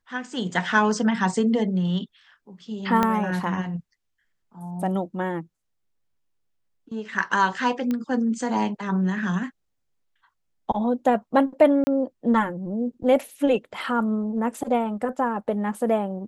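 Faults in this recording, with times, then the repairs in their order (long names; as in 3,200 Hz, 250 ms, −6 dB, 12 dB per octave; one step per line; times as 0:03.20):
0:03.03: click −8 dBFS
0:07.91: click −15 dBFS
0:11.84–0:11.87: drop-out 30 ms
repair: click removal
repair the gap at 0:11.84, 30 ms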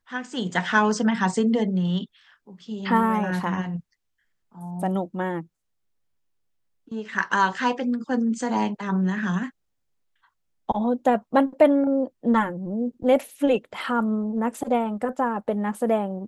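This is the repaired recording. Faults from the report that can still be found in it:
0:03.03: click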